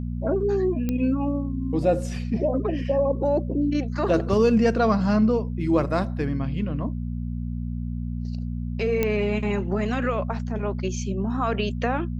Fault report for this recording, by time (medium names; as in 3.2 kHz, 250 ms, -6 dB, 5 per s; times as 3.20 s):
hum 60 Hz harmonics 4 -29 dBFS
0.89 s: pop -14 dBFS
9.03 s: pop -10 dBFS